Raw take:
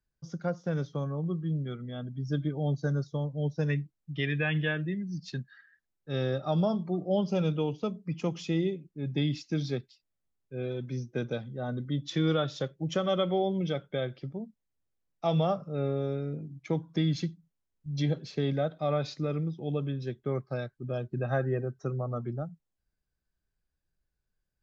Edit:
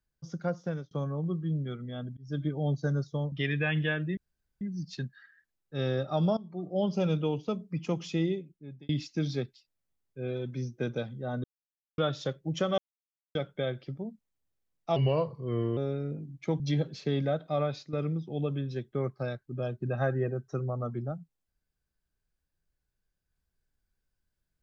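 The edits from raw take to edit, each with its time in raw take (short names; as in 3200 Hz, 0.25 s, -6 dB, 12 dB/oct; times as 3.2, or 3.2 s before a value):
0.64–0.91 fade out
2.17–2.44 fade in
3.32–4.11 cut
4.96 insert room tone 0.44 s
6.72–7.25 fade in, from -18 dB
8.57–9.24 fade out
11.79–12.33 mute
13.13–13.7 mute
15.31–15.99 speed 84%
16.82–17.91 cut
18.9–19.24 fade out, to -11 dB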